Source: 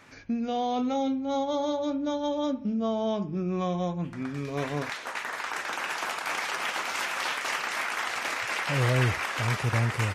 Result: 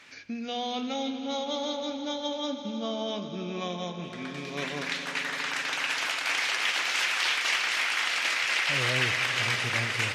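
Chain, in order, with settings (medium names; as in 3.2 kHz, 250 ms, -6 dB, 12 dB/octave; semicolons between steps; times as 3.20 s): frequency weighting D; echo with a slow build-up 81 ms, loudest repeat 5, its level -16 dB; trim -4.5 dB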